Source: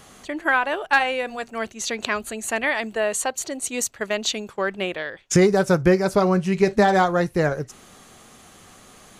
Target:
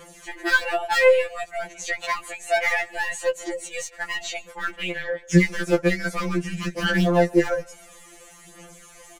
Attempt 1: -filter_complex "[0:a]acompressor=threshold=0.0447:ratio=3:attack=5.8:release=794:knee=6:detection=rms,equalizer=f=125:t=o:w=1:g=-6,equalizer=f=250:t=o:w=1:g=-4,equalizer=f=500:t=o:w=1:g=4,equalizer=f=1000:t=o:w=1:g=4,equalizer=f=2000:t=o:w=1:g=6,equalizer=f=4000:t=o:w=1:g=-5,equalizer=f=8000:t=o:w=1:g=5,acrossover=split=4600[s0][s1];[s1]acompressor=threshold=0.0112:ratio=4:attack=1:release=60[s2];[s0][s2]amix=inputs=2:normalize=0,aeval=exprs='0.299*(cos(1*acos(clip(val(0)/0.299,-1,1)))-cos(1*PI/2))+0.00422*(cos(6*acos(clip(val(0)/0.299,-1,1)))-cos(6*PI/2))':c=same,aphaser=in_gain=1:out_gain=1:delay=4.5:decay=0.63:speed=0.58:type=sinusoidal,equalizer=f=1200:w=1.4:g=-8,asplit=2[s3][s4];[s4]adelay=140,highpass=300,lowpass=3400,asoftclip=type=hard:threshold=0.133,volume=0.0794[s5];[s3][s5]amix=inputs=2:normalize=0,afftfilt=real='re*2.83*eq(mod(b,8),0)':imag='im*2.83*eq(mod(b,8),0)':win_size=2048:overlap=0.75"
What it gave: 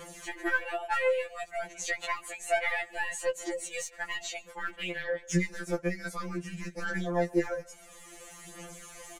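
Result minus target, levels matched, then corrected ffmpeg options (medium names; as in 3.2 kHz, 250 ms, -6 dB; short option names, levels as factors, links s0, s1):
compression: peak gain reduction +13 dB
-filter_complex "[0:a]equalizer=f=125:t=o:w=1:g=-6,equalizer=f=250:t=o:w=1:g=-4,equalizer=f=500:t=o:w=1:g=4,equalizer=f=1000:t=o:w=1:g=4,equalizer=f=2000:t=o:w=1:g=6,equalizer=f=4000:t=o:w=1:g=-5,equalizer=f=8000:t=o:w=1:g=5,acrossover=split=4600[s0][s1];[s1]acompressor=threshold=0.0112:ratio=4:attack=1:release=60[s2];[s0][s2]amix=inputs=2:normalize=0,aeval=exprs='0.299*(cos(1*acos(clip(val(0)/0.299,-1,1)))-cos(1*PI/2))+0.00422*(cos(6*acos(clip(val(0)/0.299,-1,1)))-cos(6*PI/2))':c=same,aphaser=in_gain=1:out_gain=1:delay=4.5:decay=0.63:speed=0.58:type=sinusoidal,equalizer=f=1200:w=1.4:g=-8,asplit=2[s3][s4];[s4]adelay=140,highpass=300,lowpass=3400,asoftclip=type=hard:threshold=0.133,volume=0.0794[s5];[s3][s5]amix=inputs=2:normalize=0,afftfilt=real='re*2.83*eq(mod(b,8),0)':imag='im*2.83*eq(mod(b,8),0)':win_size=2048:overlap=0.75"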